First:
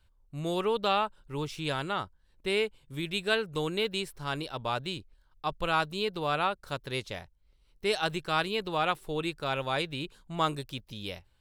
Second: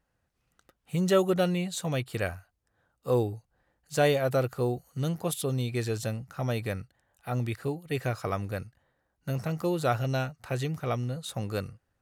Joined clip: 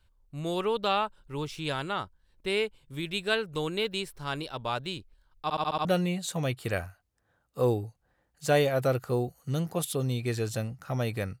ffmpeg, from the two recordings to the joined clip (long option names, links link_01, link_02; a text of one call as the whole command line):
ffmpeg -i cue0.wav -i cue1.wav -filter_complex "[0:a]apad=whole_dur=11.4,atrim=end=11.4,asplit=6[link_01][link_02][link_03][link_04][link_05][link_06];[link_01]atrim=end=5.502[link_07];[link_02]atrim=start=5.428:end=5.502[link_08];[link_03]atrim=start=5.428:end=5.502[link_09];[link_04]atrim=start=5.428:end=5.502[link_10];[link_05]atrim=start=5.428:end=5.502[link_11];[link_06]atrim=start=5.428:end=5.502[link_12];[1:a]atrim=start=1.338:end=6.89[link_13];[link_07][link_08]acrossfade=duration=0.004:curve1=hsin:curve2=hsin[link_14];[link_14][link_09]acrossfade=duration=0.004:curve1=hsin:curve2=hsin[link_15];[link_15][link_10]acrossfade=duration=0.004:curve1=hsin:curve2=hsin[link_16];[link_16][link_11]acrossfade=duration=0.004:curve1=hsin:curve2=hsin[link_17];[link_17][link_12]acrossfade=duration=0.004:curve1=hsin:curve2=hsin[link_18];[link_18][link_13]acrossfade=duration=0.004:curve1=hsin:curve2=hsin" out.wav